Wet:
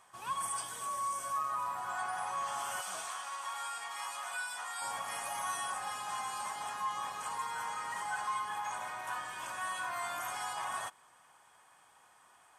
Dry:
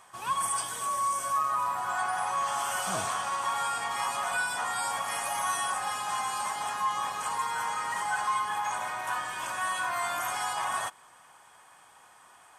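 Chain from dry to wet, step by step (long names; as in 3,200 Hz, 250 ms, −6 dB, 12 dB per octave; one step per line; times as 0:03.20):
0:02.81–0:04.82: high-pass filter 1,200 Hz 6 dB per octave
level −7 dB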